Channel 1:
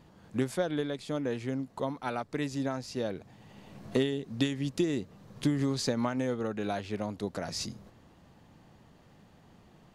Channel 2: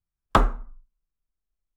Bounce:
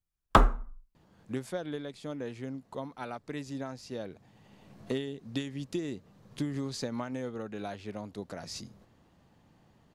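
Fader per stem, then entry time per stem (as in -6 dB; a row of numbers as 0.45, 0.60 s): -5.5, -1.5 dB; 0.95, 0.00 s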